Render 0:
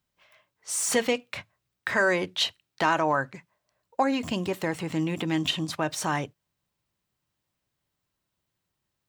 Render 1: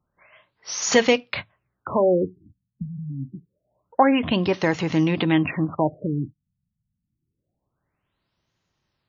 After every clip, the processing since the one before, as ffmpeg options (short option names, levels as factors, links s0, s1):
-af "afftfilt=real='re*lt(b*sr/1024,230*pow(7100/230,0.5+0.5*sin(2*PI*0.26*pts/sr)))':imag='im*lt(b*sr/1024,230*pow(7100/230,0.5+0.5*sin(2*PI*0.26*pts/sr)))':win_size=1024:overlap=0.75,volume=2.37"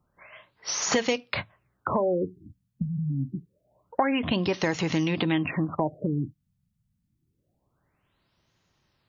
-filter_complex "[0:a]acrossover=split=1800|5100[s0][s1][s2];[s0]acompressor=threshold=0.0355:ratio=4[s3];[s1]acompressor=threshold=0.0112:ratio=4[s4];[s2]acompressor=threshold=0.0126:ratio=4[s5];[s3][s4][s5]amix=inputs=3:normalize=0,volume=1.68"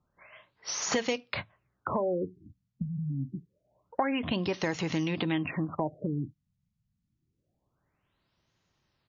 -af "aresample=16000,aresample=44100,volume=0.596"